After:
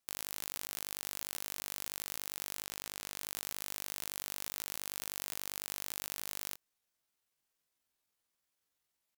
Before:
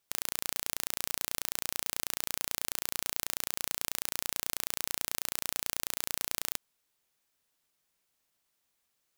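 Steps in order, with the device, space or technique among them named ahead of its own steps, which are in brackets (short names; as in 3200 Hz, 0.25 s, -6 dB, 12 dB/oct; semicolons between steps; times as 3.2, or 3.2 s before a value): 2.64–3.18 high shelf 7900 Hz -9 dB; chipmunk voice (pitch shift +9 st); gain -3.5 dB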